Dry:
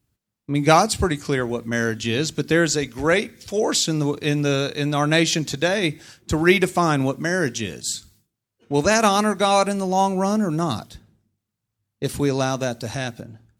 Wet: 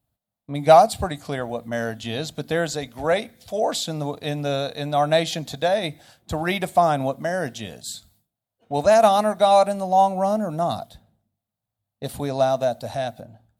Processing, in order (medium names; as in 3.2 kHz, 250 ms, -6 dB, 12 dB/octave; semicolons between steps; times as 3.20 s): FFT filter 260 Hz 0 dB, 370 Hz -7 dB, 680 Hz +14 dB, 970 Hz +3 dB, 1.5 kHz -1 dB, 2.6 kHz -3 dB, 3.7 kHz +3 dB, 5.7 kHz -6 dB, 12 kHz +4 dB; trim -5.5 dB